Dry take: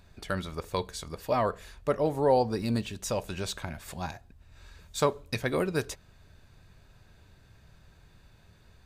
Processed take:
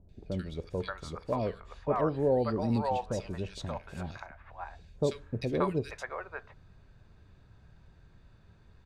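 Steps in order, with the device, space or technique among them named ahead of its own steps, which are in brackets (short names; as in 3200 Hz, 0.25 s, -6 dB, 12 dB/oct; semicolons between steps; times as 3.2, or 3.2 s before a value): 1.55–2.07 LPF 8300 Hz; through cloth (LPF 8500 Hz 12 dB/oct; high shelf 3400 Hz -12.5 dB); three bands offset in time lows, highs, mids 90/580 ms, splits 650/2200 Hz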